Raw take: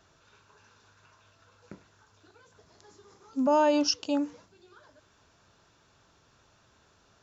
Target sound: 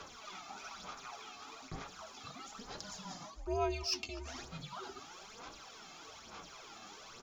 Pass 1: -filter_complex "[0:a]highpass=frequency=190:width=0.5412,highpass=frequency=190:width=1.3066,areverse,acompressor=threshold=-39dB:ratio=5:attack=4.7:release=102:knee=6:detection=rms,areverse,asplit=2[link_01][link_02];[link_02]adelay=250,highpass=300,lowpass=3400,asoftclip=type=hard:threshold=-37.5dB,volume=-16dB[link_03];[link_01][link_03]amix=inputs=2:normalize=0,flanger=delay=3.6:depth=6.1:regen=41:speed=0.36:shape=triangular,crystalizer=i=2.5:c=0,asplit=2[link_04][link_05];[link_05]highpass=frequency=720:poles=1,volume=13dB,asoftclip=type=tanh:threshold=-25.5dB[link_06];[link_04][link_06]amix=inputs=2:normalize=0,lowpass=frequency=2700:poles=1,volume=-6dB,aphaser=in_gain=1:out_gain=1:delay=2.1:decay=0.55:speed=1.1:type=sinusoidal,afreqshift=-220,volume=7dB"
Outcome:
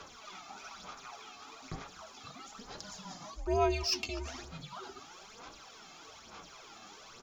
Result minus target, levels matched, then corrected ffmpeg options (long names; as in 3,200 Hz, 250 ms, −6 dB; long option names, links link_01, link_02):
downward compressor: peak gain reduction −6 dB
-filter_complex "[0:a]highpass=frequency=190:width=0.5412,highpass=frequency=190:width=1.3066,areverse,acompressor=threshold=-46.5dB:ratio=5:attack=4.7:release=102:knee=6:detection=rms,areverse,asplit=2[link_01][link_02];[link_02]adelay=250,highpass=300,lowpass=3400,asoftclip=type=hard:threshold=-37.5dB,volume=-16dB[link_03];[link_01][link_03]amix=inputs=2:normalize=0,flanger=delay=3.6:depth=6.1:regen=41:speed=0.36:shape=triangular,crystalizer=i=2.5:c=0,asplit=2[link_04][link_05];[link_05]highpass=frequency=720:poles=1,volume=13dB,asoftclip=type=tanh:threshold=-25.5dB[link_06];[link_04][link_06]amix=inputs=2:normalize=0,lowpass=frequency=2700:poles=1,volume=-6dB,aphaser=in_gain=1:out_gain=1:delay=2.1:decay=0.55:speed=1.1:type=sinusoidal,afreqshift=-220,volume=7dB"